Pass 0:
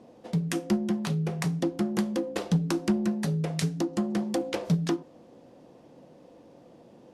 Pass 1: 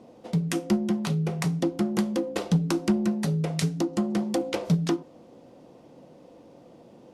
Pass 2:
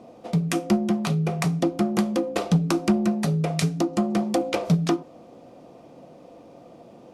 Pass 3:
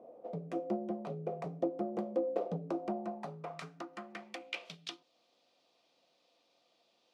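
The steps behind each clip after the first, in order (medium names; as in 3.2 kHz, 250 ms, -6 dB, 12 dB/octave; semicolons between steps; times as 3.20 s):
band-stop 1.7 kHz, Q 14; trim +2 dB
small resonant body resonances 690/1200/2400 Hz, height 7 dB, ringing for 25 ms; trim +2.5 dB
dynamic bell 1.3 kHz, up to -3 dB, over -42 dBFS, Q 0.78; band-pass sweep 540 Hz -> 4 kHz, 2.65–5.07 s; trim -3.5 dB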